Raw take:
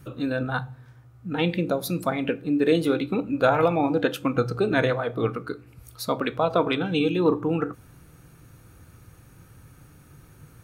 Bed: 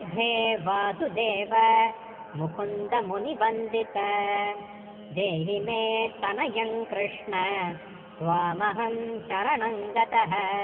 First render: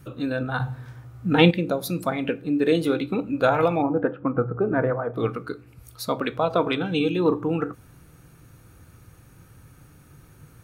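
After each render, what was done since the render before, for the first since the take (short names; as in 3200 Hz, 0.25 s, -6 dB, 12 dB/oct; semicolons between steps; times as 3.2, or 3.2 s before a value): 0.6–1.51 gain +8.5 dB; 3.82–5.14 LPF 1500 Hz 24 dB/oct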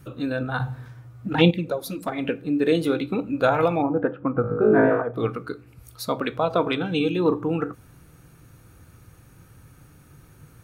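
0.88–2.18 envelope flanger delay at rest 11.3 ms, full sweep at -12.5 dBFS; 4.42–5.02 flutter echo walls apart 3.2 m, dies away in 0.64 s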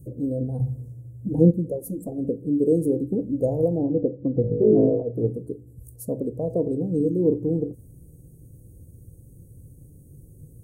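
elliptic band-stop 510–8000 Hz, stop band 50 dB; low shelf 170 Hz +6 dB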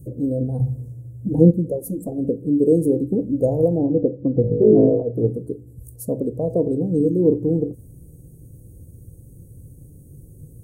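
gain +4 dB; limiter -2 dBFS, peak gain reduction 1 dB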